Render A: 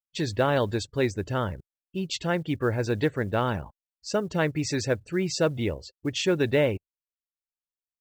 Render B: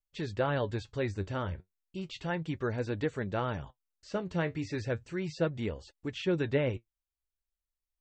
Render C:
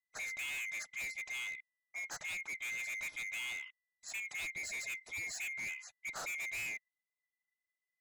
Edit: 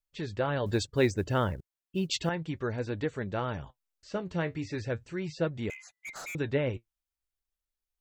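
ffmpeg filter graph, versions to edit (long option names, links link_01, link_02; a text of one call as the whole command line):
ffmpeg -i take0.wav -i take1.wav -i take2.wav -filter_complex "[1:a]asplit=3[link_01][link_02][link_03];[link_01]atrim=end=0.662[link_04];[0:a]atrim=start=0.658:end=2.292[link_05];[link_02]atrim=start=2.288:end=5.702[link_06];[2:a]atrim=start=5.698:end=6.352[link_07];[link_03]atrim=start=6.348[link_08];[link_04][link_05]acrossfade=duration=0.004:curve1=hsin:curve2=hsin[link_09];[link_09][link_06]acrossfade=duration=0.004:curve1=hsin:curve2=hsin[link_10];[link_10][link_07]acrossfade=duration=0.004:curve1=hsin:curve2=hsin[link_11];[link_11][link_08]acrossfade=duration=0.004:curve1=hsin:curve2=hsin" out.wav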